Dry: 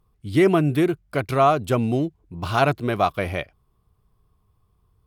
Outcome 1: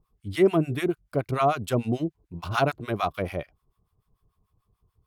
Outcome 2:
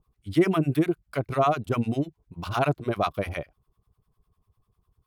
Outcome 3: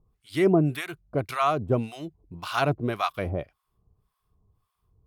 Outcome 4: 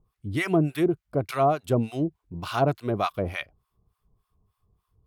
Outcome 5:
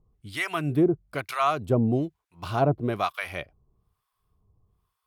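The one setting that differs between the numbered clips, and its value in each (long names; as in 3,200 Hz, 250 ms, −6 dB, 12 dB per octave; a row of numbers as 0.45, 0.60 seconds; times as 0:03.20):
two-band tremolo in antiphase, speed: 6.8, 10, 1.8, 3.4, 1.1 Hertz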